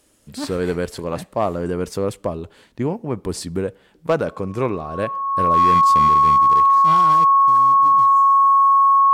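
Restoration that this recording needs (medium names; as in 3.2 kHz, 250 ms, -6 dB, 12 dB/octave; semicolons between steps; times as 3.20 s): clip repair -10 dBFS; band-stop 1.1 kHz, Q 30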